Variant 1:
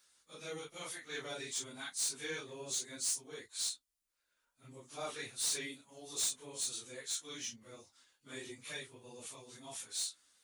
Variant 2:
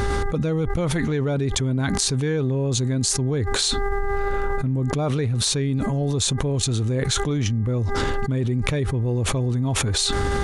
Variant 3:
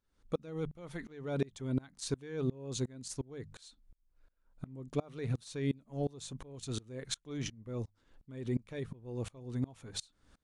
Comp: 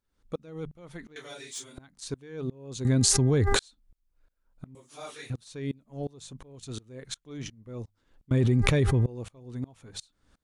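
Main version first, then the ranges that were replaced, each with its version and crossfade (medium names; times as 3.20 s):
3
1.16–1.78 s: from 1
2.85–3.59 s: from 2
4.75–5.30 s: from 1
8.31–9.06 s: from 2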